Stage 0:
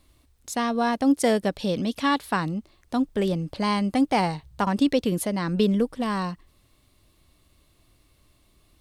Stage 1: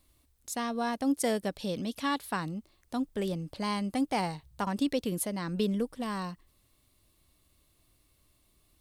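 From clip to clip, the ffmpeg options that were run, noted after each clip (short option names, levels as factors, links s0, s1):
-af "highshelf=f=8000:g=10,volume=0.398"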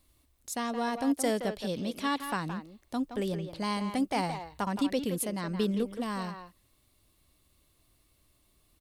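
-filter_complex "[0:a]asplit=2[s0][s1];[s1]adelay=170,highpass=300,lowpass=3400,asoftclip=type=hard:threshold=0.0531,volume=0.447[s2];[s0][s2]amix=inputs=2:normalize=0"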